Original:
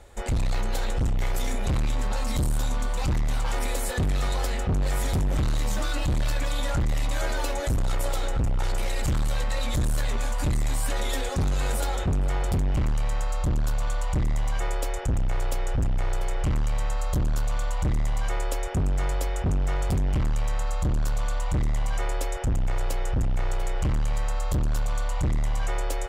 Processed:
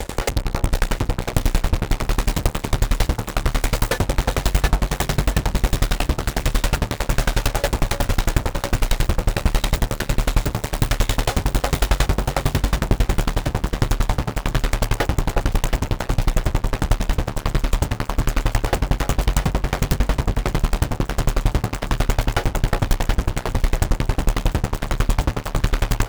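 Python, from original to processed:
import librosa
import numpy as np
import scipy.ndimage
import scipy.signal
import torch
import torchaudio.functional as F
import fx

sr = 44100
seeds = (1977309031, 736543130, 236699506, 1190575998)

p1 = fx.tracing_dist(x, sr, depth_ms=0.11)
p2 = fx.fuzz(p1, sr, gain_db=52.0, gate_db=-51.0)
p3 = p2 + fx.echo_alternate(p2, sr, ms=350, hz=1300.0, feedback_pct=77, wet_db=-2, dry=0)
y = fx.tremolo_decay(p3, sr, direction='decaying', hz=11.0, depth_db=28)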